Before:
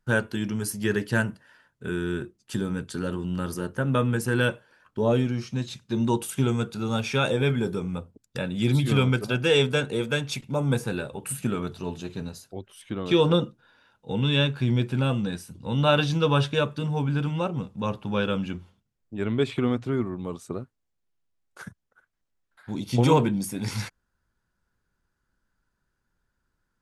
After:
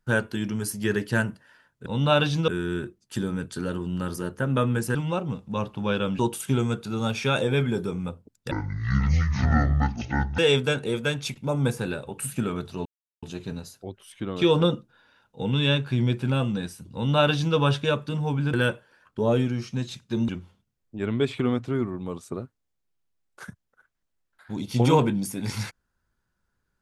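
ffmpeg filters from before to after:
ffmpeg -i in.wav -filter_complex "[0:a]asplit=10[link_01][link_02][link_03][link_04][link_05][link_06][link_07][link_08][link_09][link_10];[link_01]atrim=end=1.862[link_11];[link_02]atrim=start=15.628:end=16.252[link_12];[link_03]atrim=start=1.858:end=4.332[link_13];[link_04]atrim=start=17.228:end=18.472[link_14];[link_05]atrim=start=6.078:end=8.404[link_15];[link_06]atrim=start=8.4:end=9.45,asetpts=PTS-STARTPTS,asetrate=24696,aresample=44100,atrim=end_sample=82687,asetpts=PTS-STARTPTS[link_16];[link_07]atrim=start=9.446:end=11.92,asetpts=PTS-STARTPTS,afade=type=out:start_time=2.47:duration=0.004:curve=hsin,apad=pad_dur=0.37[link_17];[link_08]atrim=start=11.92:end=17.232,asetpts=PTS-STARTPTS,afade=type=in:duration=0.004:curve=hsin[link_18];[link_09]atrim=start=4.328:end=6.082[link_19];[link_10]atrim=start=18.468[link_20];[link_11][link_12]acrossfade=duration=0.004:curve1=hsin:curve2=hsin[link_21];[link_21][link_13]acrossfade=duration=0.004:curve1=hsin:curve2=hsin[link_22];[link_22][link_14]acrossfade=duration=0.004:curve1=hsin:curve2=hsin[link_23];[link_23][link_15]acrossfade=duration=0.004:curve1=hsin:curve2=hsin[link_24];[link_24][link_16]acrossfade=duration=0.004:curve1=hsin:curve2=hsin[link_25];[link_17][link_18]concat=n=2:v=0:a=1[link_26];[link_25][link_26]acrossfade=duration=0.004:curve1=hsin:curve2=hsin[link_27];[link_27][link_19]acrossfade=duration=0.004:curve1=hsin:curve2=hsin[link_28];[link_28][link_20]acrossfade=duration=0.004:curve1=hsin:curve2=hsin" out.wav

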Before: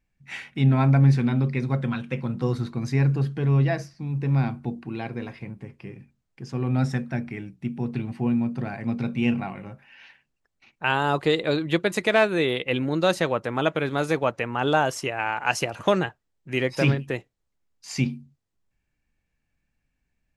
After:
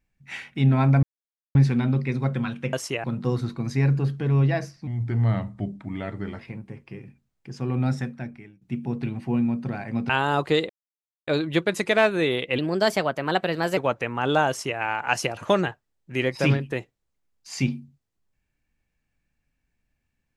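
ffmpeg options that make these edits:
ffmpeg -i in.wav -filter_complex "[0:a]asplit=11[link_01][link_02][link_03][link_04][link_05][link_06][link_07][link_08][link_09][link_10][link_11];[link_01]atrim=end=1.03,asetpts=PTS-STARTPTS,afade=type=out:start_time=1.026:duration=0.004:curve=hsin,apad=pad_dur=0.52[link_12];[link_02]atrim=start=1.03:end=2.212,asetpts=PTS-STARTPTS,afade=type=in:duration=0.004:curve=hsin[link_13];[link_03]atrim=start=14.858:end=15.172[link_14];[link_04]atrim=start=2.208:end=4.044[link_15];[link_05]atrim=start=4.04:end=5.32,asetpts=PTS-STARTPTS,asetrate=37044,aresample=44100[link_16];[link_06]atrim=start=5.316:end=7.54,asetpts=PTS-STARTPTS,afade=type=out:start_time=1.374:duration=0.85:silence=0.0944061[link_17];[link_07]atrim=start=7.54:end=9.022,asetpts=PTS-STARTPTS,afade=type=in:duration=0.004:curve=hsin:silence=0.0944061[link_18];[link_08]atrim=start=10.848:end=11.45,asetpts=PTS-STARTPTS,afade=type=out:start_time=0.598:duration=0.004:curve=hsin,apad=pad_dur=0.58[link_19];[link_09]atrim=start=11.45:end=12.764,asetpts=PTS-STARTPTS,afade=type=in:duration=0.004:curve=hsin[link_20];[link_10]atrim=start=12.76:end=14.15,asetpts=PTS-STARTPTS,asetrate=51597,aresample=44100,atrim=end_sample=52392,asetpts=PTS-STARTPTS[link_21];[link_11]atrim=start=14.146[link_22];[link_12][link_13]concat=n=2:v=0:a=1[link_23];[link_23][link_14]acrossfade=duration=0.004:curve1=hsin:curve2=hsin[link_24];[link_24][link_15]acrossfade=duration=0.004:curve1=hsin:curve2=hsin[link_25];[link_25][link_16]acrossfade=duration=0.004:curve1=hsin:curve2=hsin[link_26];[link_17][link_18]concat=n=2:v=0:a=1[link_27];[link_26][link_27]acrossfade=duration=0.004:curve1=hsin:curve2=hsin[link_28];[link_19][link_20]concat=n=2:v=0:a=1[link_29];[link_28][link_29]acrossfade=duration=0.004:curve1=hsin:curve2=hsin[link_30];[link_30][link_21]acrossfade=duration=0.004:curve1=hsin:curve2=hsin[link_31];[link_31][link_22]acrossfade=duration=0.004:curve1=hsin:curve2=hsin" out.wav

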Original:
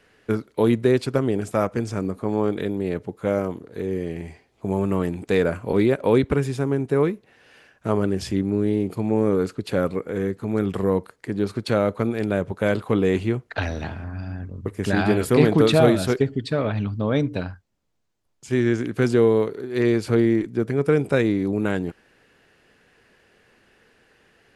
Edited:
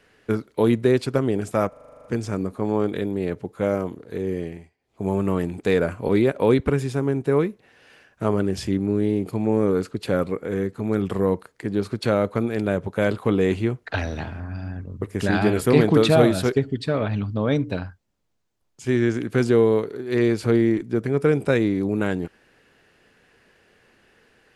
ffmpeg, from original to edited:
ffmpeg -i in.wav -filter_complex "[0:a]asplit=12[link_01][link_02][link_03][link_04][link_05][link_06][link_07][link_08][link_09][link_10][link_11][link_12];[link_01]atrim=end=1.732[link_13];[link_02]atrim=start=1.688:end=1.732[link_14];[link_03]atrim=start=1.688:end=1.732[link_15];[link_04]atrim=start=1.688:end=1.732[link_16];[link_05]atrim=start=1.688:end=1.732[link_17];[link_06]atrim=start=1.688:end=1.732[link_18];[link_07]atrim=start=1.688:end=1.732[link_19];[link_08]atrim=start=1.688:end=1.732[link_20];[link_09]atrim=start=1.688:end=1.732[link_21];[link_10]atrim=start=1.688:end=4.34,asetpts=PTS-STARTPTS,afade=type=out:start_time=2.362:duration=0.29:silence=0.0891251[link_22];[link_11]atrim=start=4.34:end=4.42,asetpts=PTS-STARTPTS,volume=-21dB[link_23];[link_12]atrim=start=4.42,asetpts=PTS-STARTPTS,afade=type=in:duration=0.29:silence=0.0891251[link_24];[link_13][link_14]acrossfade=duration=0.004:curve1=hsin:curve2=hsin[link_25];[link_25][link_15]acrossfade=duration=0.004:curve1=hsin:curve2=hsin[link_26];[link_26][link_16]acrossfade=duration=0.004:curve1=hsin:curve2=hsin[link_27];[link_27][link_17]acrossfade=duration=0.004:curve1=hsin:curve2=hsin[link_28];[link_28][link_18]acrossfade=duration=0.004:curve1=hsin:curve2=hsin[link_29];[link_29][link_19]acrossfade=duration=0.004:curve1=hsin:curve2=hsin[link_30];[link_30][link_20]acrossfade=duration=0.004:curve1=hsin:curve2=hsin[link_31];[link_31][link_21]acrossfade=duration=0.004:curve1=hsin:curve2=hsin[link_32];[link_22][link_23][link_24]concat=n=3:v=0:a=1[link_33];[link_32][link_33]acrossfade=duration=0.004:curve1=hsin:curve2=hsin" out.wav

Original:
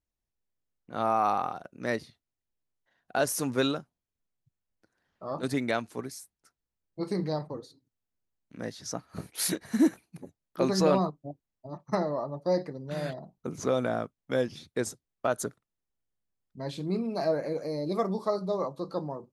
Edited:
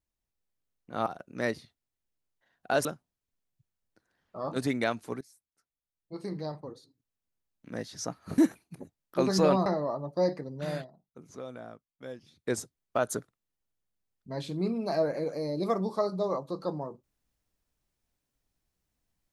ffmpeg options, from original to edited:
ffmpeg -i in.wav -filter_complex "[0:a]asplit=8[link_01][link_02][link_03][link_04][link_05][link_06][link_07][link_08];[link_01]atrim=end=1.062[link_09];[link_02]atrim=start=1.508:end=3.302[link_10];[link_03]atrim=start=3.718:end=6.08,asetpts=PTS-STARTPTS,afade=type=out:start_time=2.358:duration=0.004:curve=hsin:silence=0.125893[link_11];[link_04]atrim=start=6.08:end=9.252,asetpts=PTS-STARTPTS,afade=type=in:duration=2.6:silence=0.125893[link_12];[link_05]atrim=start=9.798:end=11.082[link_13];[link_06]atrim=start=11.948:end=13.18,asetpts=PTS-STARTPTS,afade=type=out:start_time=1.072:duration=0.16:silence=0.188365[link_14];[link_07]atrim=start=13.18:end=14.64,asetpts=PTS-STARTPTS,volume=-14.5dB[link_15];[link_08]atrim=start=14.64,asetpts=PTS-STARTPTS,afade=type=in:duration=0.16:silence=0.188365[link_16];[link_09][link_10]acrossfade=duration=0.004:curve1=hsin:curve2=hsin[link_17];[link_11][link_12]concat=n=2:v=0:a=1[link_18];[link_17][link_18]acrossfade=duration=0.004:curve1=hsin:curve2=hsin[link_19];[link_19][link_13]acrossfade=duration=0.004:curve1=hsin:curve2=hsin[link_20];[link_14][link_15][link_16]concat=n=3:v=0:a=1[link_21];[link_20][link_21]acrossfade=duration=0.004:curve1=hsin:curve2=hsin" out.wav

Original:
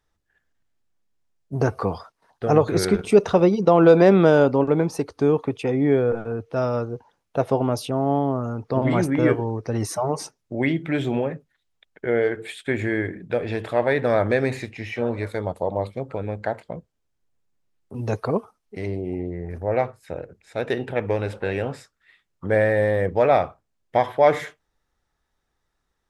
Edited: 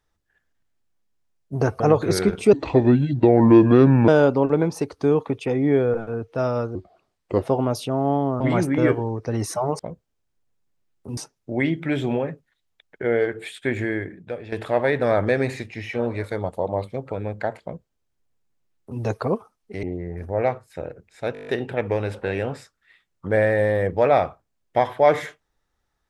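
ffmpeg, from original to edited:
ffmpeg -i in.wav -filter_complex "[0:a]asplit=18[link_01][link_02][link_03][link_04][link_05][link_06][link_07][link_08][link_09][link_10][link_11][link_12][link_13][link_14][link_15][link_16][link_17][link_18];[link_01]atrim=end=1.802[link_19];[link_02]atrim=start=2.458:end=3.194[link_20];[link_03]atrim=start=3.19:end=4.26,asetpts=PTS-STARTPTS,asetrate=30429,aresample=44100[link_21];[link_04]atrim=start=4.256:end=6.934[link_22];[link_05]atrim=start=6.93:end=7.44,asetpts=PTS-STARTPTS,asetrate=33516,aresample=44100,atrim=end_sample=29593,asetpts=PTS-STARTPTS[link_23];[link_06]atrim=start=7.436:end=8.422[link_24];[link_07]atrim=start=8.808:end=10.202[link_25];[link_08]atrim=start=16.648:end=18.032[link_26];[link_09]atrim=start=10.198:end=13.55,asetpts=PTS-STARTPTS,afade=type=out:start_time=2.562:duration=0.79:silence=0.251189[link_27];[link_10]atrim=start=13.55:end=18.862,asetpts=PTS-STARTPTS,afade=type=in:duration=0.004:curve=hsin:silence=0.251189[link_28];[link_11]atrim=start=19.158:end=20.682[link_29];[link_12]atrim=start=20.658:end=20.682[link_30];[link_13]atrim=start=20.658:end=20.682[link_31];[link_14]atrim=start=20.658:end=20.682[link_32];[link_15]atrim=start=20.658:end=20.682[link_33];[link_16]atrim=start=20.658:end=20.682[link_34];[link_17]atrim=start=20.658:end=20.682[link_35];[link_18]atrim=start=20.658[link_36];[link_19][link_20]acrossfade=duration=0.004:curve1=hsin:curve2=hsin[link_37];[link_37][link_21]acrossfade=duration=0.004:curve1=hsin:curve2=hsin[link_38];[link_38][link_22]acrossfade=duration=0.004:curve1=hsin:curve2=hsin[link_39];[link_39][link_23]acrossfade=duration=0.004:curve1=hsin:curve2=hsin[link_40];[link_40][link_24]acrossfade=duration=0.004:curve1=hsin:curve2=hsin[link_41];[link_41][link_25]acrossfade=duration=0.004:curve1=hsin:curve2=hsin[link_42];[link_42][link_26]acrossfade=duration=0.004:curve1=hsin:curve2=hsin[link_43];[link_27][link_28]concat=n=2:v=0:a=1[link_44];[link_43][link_44]acrossfade=duration=0.004:curve1=hsin:curve2=hsin[link_45];[link_45][link_29]acrossfade=duration=0.004:curve1=hsin:curve2=hsin[link_46];[link_46][link_30]acrossfade=duration=0.004:curve1=hsin:curve2=hsin[link_47];[link_47][link_31]acrossfade=duration=0.004:curve1=hsin:curve2=hsin[link_48];[link_48][link_32]acrossfade=duration=0.004:curve1=hsin:curve2=hsin[link_49];[link_49][link_33]acrossfade=duration=0.004:curve1=hsin:curve2=hsin[link_50];[link_50][link_34]acrossfade=duration=0.004:curve1=hsin:curve2=hsin[link_51];[link_51][link_35]acrossfade=duration=0.004:curve1=hsin:curve2=hsin[link_52];[link_52][link_36]acrossfade=duration=0.004:curve1=hsin:curve2=hsin" out.wav

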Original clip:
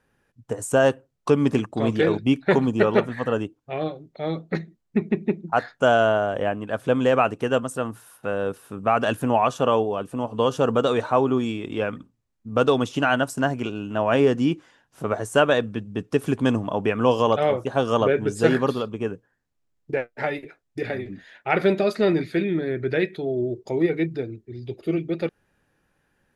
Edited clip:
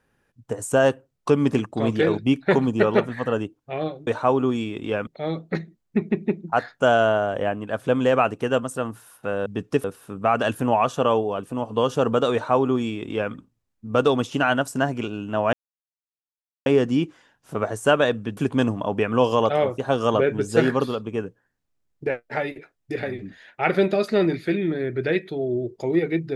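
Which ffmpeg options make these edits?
ffmpeg -i in.wav -filter_complex "[0:a]asplit=7[link_01][link_02][link_03][link_04][link_05][link_06][link_07];[link_01]atrim=end=4.072[link_08];[link_02]atrim=start=10.948:end=11.952[link_09];[link_03]atrim=start=4.068:end=8.462[link_10];[link_04]atrim=start=15.858:end=16.242[link_11];[link_05]atrim=start=8.458:end=14.15,asetpts=PTS-STARTPTS,afade=type=out:start_time=5.688:duration=0.004:curve=hsin,apad=pad_dur=1.13[link_12];[link_06]atrim=start=14.15:end=15.862,asetpts=PTS-STARTPTS,afade=type=in:duration=0.004:curve=hsin[link_13];[link_07]atrim=start=16.238[link_14];[link_08][link_09]acrossfade=duration=0.004:curve1=hsin:curve2=hsin[link_15];[link_15][link_10]acrossfade=duration=0.004:curve1=hsin:curve2=hsin[link_16];[link_16][link_11]acrossfade=duration=0.004:curve1=hsin:curve2=hsin[link_17];[link_12][link_13]concat=n=2:v=0:a=1[link_18];[link_17][link_18]acrossfade=duration=0.004:curve1=hsin:curve2=hsin[link_19];[link_19][link_14]acrossfade=duration=0.004:curve1=hsin:curve2=hsin" out.wav

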